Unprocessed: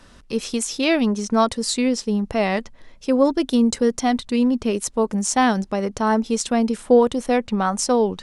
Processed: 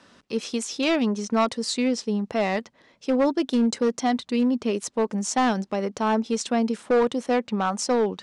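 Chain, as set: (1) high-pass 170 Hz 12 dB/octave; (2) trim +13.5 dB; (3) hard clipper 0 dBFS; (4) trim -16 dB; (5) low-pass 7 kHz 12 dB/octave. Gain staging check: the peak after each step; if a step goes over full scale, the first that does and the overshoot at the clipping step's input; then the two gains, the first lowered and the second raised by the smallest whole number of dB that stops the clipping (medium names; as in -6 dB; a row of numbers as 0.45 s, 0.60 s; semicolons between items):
-4.5 dBFS, +9.0 dBFS, 0.0 dBFS, -16.0 dBFS, -15.5 dBFS; step 2, 9.0 dB; step 2 +4.5 dB, step 4 -7 dB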